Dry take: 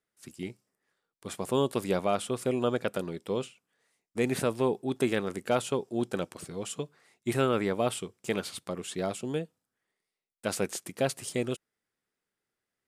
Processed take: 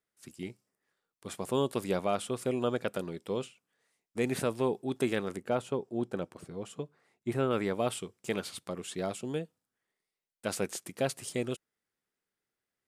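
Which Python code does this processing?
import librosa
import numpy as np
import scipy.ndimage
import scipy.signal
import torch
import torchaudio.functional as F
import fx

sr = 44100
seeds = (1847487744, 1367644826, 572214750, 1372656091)

y = fx.high_shelf(x, sr, hz=2100.0, db=-10.5, at=(5.37, 7.51))
y = y * 10.0 ** (-2.5 / 20.0)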